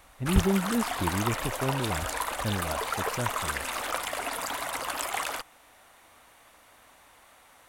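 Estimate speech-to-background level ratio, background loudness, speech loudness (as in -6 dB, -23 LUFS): -0.5 dB, -31.5 LUFS, -32.0 LUFS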